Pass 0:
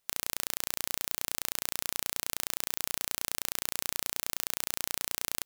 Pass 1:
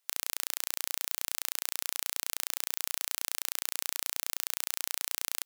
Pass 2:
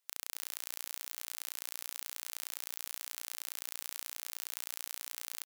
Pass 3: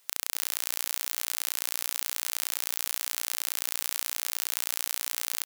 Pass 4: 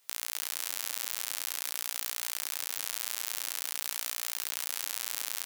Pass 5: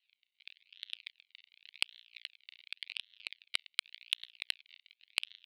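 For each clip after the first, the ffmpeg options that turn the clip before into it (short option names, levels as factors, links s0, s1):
-af "highpass=f=980:p=1"
-filter_complex "[0:a]alimiter=limit=0.422:level=0:latency=1,asplit=2[s0][s1];[s1]aecho=0:1:257:0.299[s2];[s0][s2]amix=inputs=2:normalize=0,volume=0.596"
-af "alimiter=level_in=9.44:limit=0.891:release=50:level=0:latency=1,volume=0.891"
-af "flanger=delay=18:depth=6.6:speed=0.48"
-af "acrusher=samples=36:mix=1:aa=0.000001:lfo=1:lforange=36:lforate=0.89,asuperpass=centerf=3100:order=8:qfactor=1.5,aeval=exprs='0.133*(cos(1*acos(clip(val(0)/0.133,-1,1)))-cos(1*PI/2))+0.0266*(cos(3*acos(clip(val(0)/0.133,-1,1)))-cos(3*PI/2))':c=same,volume=3.16"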